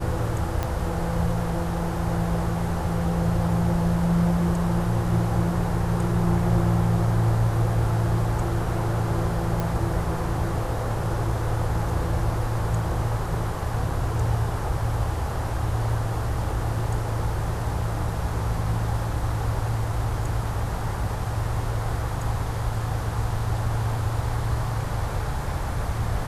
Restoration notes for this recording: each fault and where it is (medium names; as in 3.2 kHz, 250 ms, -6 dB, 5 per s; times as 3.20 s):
0.63 s: pop -13 dBFS
9.60 s: pop